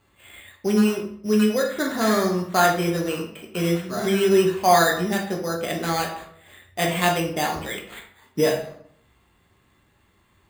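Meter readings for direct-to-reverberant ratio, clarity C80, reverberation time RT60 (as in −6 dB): −0.5 dB, 10.5 dB, 0.65 s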